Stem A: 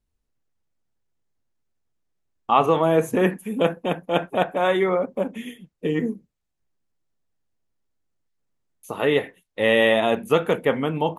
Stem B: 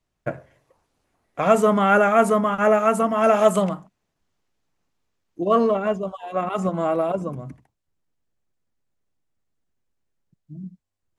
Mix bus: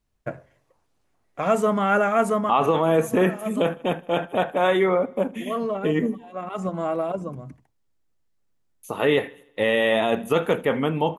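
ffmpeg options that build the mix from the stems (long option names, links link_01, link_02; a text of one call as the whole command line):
ffmpeg -i stem1.wav -i stem2.wav -filter_complex "[0:a]volume=1dB,asplit=3[link_01][link_02][link_03];[link_02]volume=-23.5dB[link_04];[1:a]volume=-3.5dB[link_05];[link_03]apad=whole_len=493145[link_06];[link_05][link_06]sidechaincompress=threshold=-29dB:ratio=12:attack=26:release=750[link_07];[link_04]aecho=0:1:78|156|234|312|390|468|546|624:1|0.53|0.281|0.149|0.0789|0.0418|0.0222|0.0117[link_08];[link_01][link_07][link_08]amix=inputs=3:normalize=0,alimiter=limit=-10dB:level=0:latency=1:release=14" out.wav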